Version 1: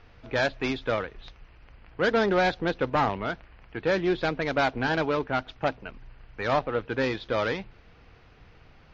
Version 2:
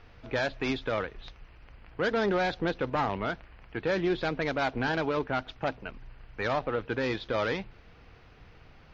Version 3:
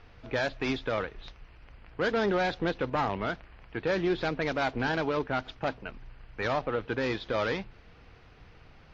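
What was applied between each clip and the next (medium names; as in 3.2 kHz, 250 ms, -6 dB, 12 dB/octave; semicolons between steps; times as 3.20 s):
peak limiter -19.5 dBFS, peak gain reduction 6.5 dB
AAC 48 kbps 22.05 kHz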